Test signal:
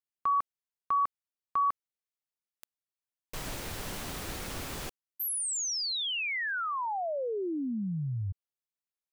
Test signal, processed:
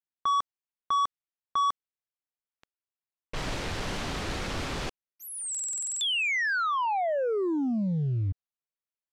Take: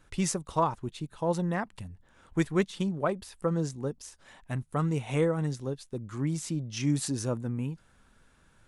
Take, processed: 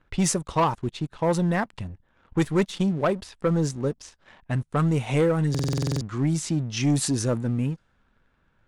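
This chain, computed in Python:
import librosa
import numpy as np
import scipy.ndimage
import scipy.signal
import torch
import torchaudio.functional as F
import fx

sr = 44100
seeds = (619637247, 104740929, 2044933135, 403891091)

y = fx.leveller(x, sr, passes=2)
y = fx.env_lowpass(y, sr, base_hz=2900.0, full_db=-19.0)
y = fx.buffer_glitch(y, sr, at_s=(5.5,), block=2048, repeats=10)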